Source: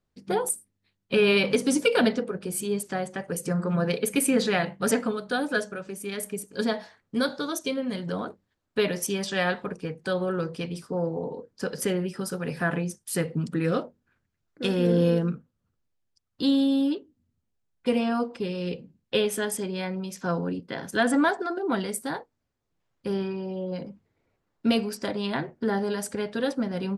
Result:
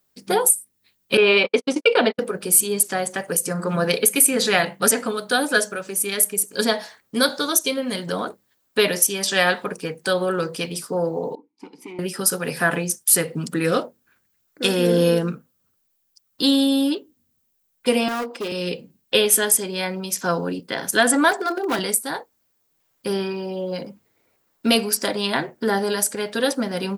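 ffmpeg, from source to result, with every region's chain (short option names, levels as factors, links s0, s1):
-filter_complex "[0:a]asettb=1/sr,asplit=3[s0][s1][s2];[s0]atrim=end=1.174[s3];[s1]atrim=start=1.17:end=2.19,asetpts=PTS-STARTPTS,afade=t=in:d=0.004:c=qsin,afade=t=out:st=1.016:d=0.004:c=qsin,highpass=260,lowpass=2800,agate=range=0.002:threshold=0.0447:ratio=16:release=100:detection=peak,equalizer=f=1600:w=3.4:g=-5[s4];[s2]atrim=start=2.186[s5];[s3][s4]acrossfade=d=0.004:c1=hsin:c2=qsin[s6];[s6][s5]acrossfade=d=0.004:c1=qsin:c2=hsin,asettb=1/sr,asplit=3[s7][s8][s9];[s7]atrim=end=11.354[s10];[s8]atrim=start=11.35:end=11.99,asetpts=PTS-STARTPTS,afade=t=in:d=0.004:c=qsin,afade=t=out:st=0.636:d=0.004:c=qsin,asoftclip=type=hard:threshold=0.0631,asplit=3[s11][s12][s13];[s11]bandpass=f=300:t=q:w=8,volume=1[s14];[s12]bandpass=f=870:t=q:w=8,volume=0.501[s15];[s13]bandpass=f=2240:t=q:w=8,volume=0.355[s16];[s14][s15][s16]amix=inputs=3:normalize=0[s17];[s9]atrim=start=11.986[s18];[s10][s17]acrossfade=d=0.004:c1=hsin:c2=qsin[s19];[s19][s18]acrossfade=d=0.004:c1=qsin:c2=hsin,asettb=1/sr,asplit=3[s20][s21][s22];[s20]atrim=end=18.084[s23];[s21]atrim=start=18.08:end=18.52,asetpts=PTS-STARTPTS,afade=t=in:d=0.004:c=qsin,afade=t=out:st=0.436:d=0.004:c=qsin,highpass=f=220:w=0.5412,highpass=f=220:w=1.3066,highshelf=f=4700:g=-7.5,asoftclip=type=hard:threshold=0.0376[s24];[s22]atrim=start=18.516[s25];[s23][s24]acrossfade=d=0.004:c1=hsin:c2=qsin[s26];[s26][s25]acrossfade=d=0.004:c1=qsin:c2=hsin,asettb=1/sr,asplit=3[s27][s28][s29];[s27]atrim=end=21.314[s30];[s28]atrim=start=21.31:end=21.79,asetpts=PTS-STARTPTS,afade=t=in:d=0.004:c=qsin,afade=t=out:st=0.476:d=0.004:c=qsin,highpass=f=170:w=0.5412,highpass=f=170:w=1.3066,bandreject=f=50:t=h:w=6,bandreject=f=100:t=h:w=6,bandreject=f=150:t=h:w=6,bandreject=f=200:t=h:w=6,bandreject=f=250:t=h:w=6,bandreject=f=300:t=h:w=6,bandreject=f=350:t=h:w=6,bandreject=f=400:t=h:w=6,asoftclip=type=hard:threshold=0.0668[s31];[s29]atrim=start=21.786[s32];[s30][s31]acrossfade=d=0.004:c1=hsin:c2=qsin[s33];[s33][s32]acrossfade=d=0.004:c1=qsin:c2=hsin,aemphasis=mode=production:type=bsi,alimiter=limit=0.282:level=0:latency=1:release=340,volume=2.37"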